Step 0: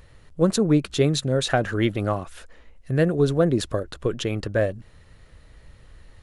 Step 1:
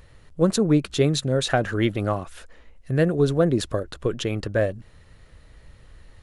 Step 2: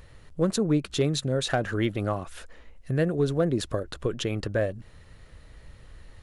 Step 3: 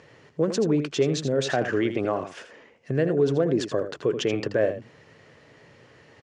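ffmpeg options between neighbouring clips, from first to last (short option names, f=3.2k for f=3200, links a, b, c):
-af anull
-filter_complex "[0:a]asplit=2[a][b];[b]acompressor=threshold=-28dB:ratio=12,volume=2.5dB[c];[a][c]amix=inputs=2:normalize=0,asoftclip=type=hard:threshold=-8dB,volume=-7dB"
-af "alimiter=limit=-20dB:level=0:latency=1:release=20,highpass=f=140:w=0.5412,highpass=f=140:w=1.3066,equalizer=f=190:t=q:w=4:g=-7,equalizer=f=420:t=q:w=4:g=4,equalizer=f=1.3k:t=q:w=4:g=-4,equalizer=f=3.9k:t=q:w=4:g=-9,lowpass=f=6.3k:w=0.5412,lowpass=f=6.3k:w=1.3066,aecho=1:1:81:0.316,volume=5dB"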